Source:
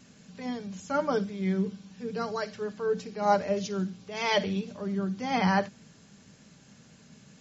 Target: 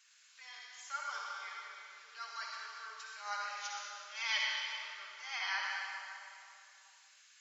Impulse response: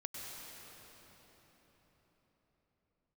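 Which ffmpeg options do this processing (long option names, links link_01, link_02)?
-filter_complex "[0:a]highpass=frequency=1300:width=0.5412,highpass=frequency=1300:width=1.3066[link_01];[1:a]atrim=start_sample=2205,asetrate=83790,aresample=44100[link_02];[link_01][link_02]afir=irnorm=-1:irlink=0,volume=5dB"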